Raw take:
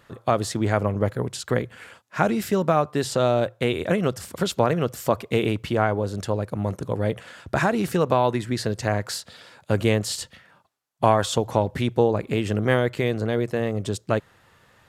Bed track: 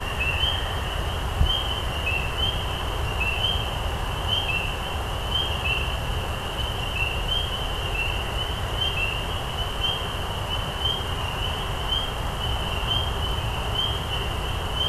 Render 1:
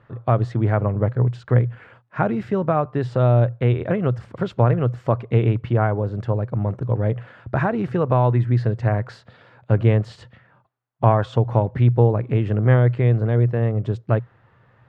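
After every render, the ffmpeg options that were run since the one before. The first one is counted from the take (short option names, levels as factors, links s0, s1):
-af "lowpass=1800,equalizer=f=120:w=4.8:g=14.5"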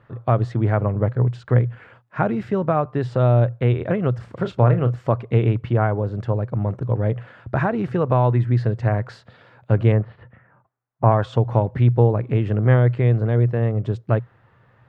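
-filter_complex "[0:a]asettb=1/sr,asplit=3[s0][s1][s2];[s0]atrim=end=4.164[s3];[s1]atrim=start=4.16:end=4.96,asetpts=PTS-STARTPTS,afade=t=in:d=0.004:c=qsin,afade=t=out:st=0.796:d=0.004:c=qsin,asplit=2[s4][s5];[s5]adelay=33,volume=0.299[s6];[s4][s6]amix=inputs=2:normalize=0,atrim=end_sample=35280[s7];[s2]atrim=start=4.956[s8];[s3][s7]acrossfade=d=0.004:c1=hsin:c2=qsin[s9];[s9][s8]acrossfade=d=0.004:c1=qsin:c2=hsin,asettb=1/sr,asplit=3[s10][s11][s12];[s10]atrim=end=9.924[s13];[s11]atrim=start=9.92:end=11.12,asetpts=PTS-STARTPTS,afade=t=in:d=0.004:c=qsin,afade=t=out:st=1.196:d=0.004:c=qsin,lowpass=f=2100:w=0.5412,lowpass=f=2100:w=1.3066[s14];[s12]atrim=start=11.116[s15];[s13][s14]acrossfade=d=0.004:c1=hsin:c2=qsin[s16];[s16][s15]acrossfade=d=0.004:c1=qsin:c2=hsin"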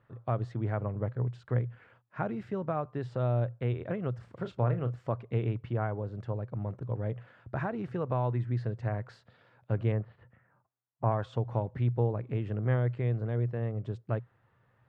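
-af "volume=0.237"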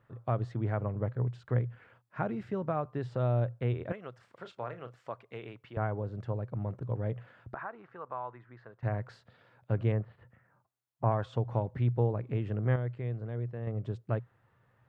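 -filter_complex "[0:a]asettb=1/sr,asplit=3[s0][s1][s2];[s0]atrim=end=3.924[s3];[s1]atrim=start=3.92:end=5.77,asetpts=PTS-STARTPTS,afade=t=in:d=0.004:c=qsin,afade=t=out:st=1.846:d=0.004:c=qsin,highpass=f=1100:p=1[s4];[s2]atrim=start=5.766[s5];[s3][s4]acrossfade=d=0.004:c1=hsin:c2=qsin[s6];[s6][s5]acrossfade=d=0.004:c1=qsin:c2=hsin,asettb=1/sr,asplit=3[s7][s8][s9];[s7]atrim=end=7.544[s10];[s8]atrim=start=7.54:end=8.83,asetpts=PTS-STARTPTS,afade=t=in:d=0.004:c=qsin,afade=t=out:st=1.286:d=0.004:c=qsin,bandpass=f=1200:t=q:w=1.8[s11];[s9]atrim=start=8.826[s12];[s10][s11]acrossfade=d=0.004:c1=hsin:c2=qsin[s13];[s13][s12]acrossfade=d=0.004:c1=qsin:c2=hsin,asplit=3[s14][s15][s16];[s14]atrim=end=12.762[s17];[s15]atrim=start=12.758:end=13.672,asetpts=PTS-STARTPTS,volume=0.531[s18];[s16]atrim=start=13.668[s19];[s17][s18]acrossfade=d=0.004:c1=hsin:c2=hsin[s20];[s20][s19]acrossfade=d=0.004:c1=hsin:c2=hsin"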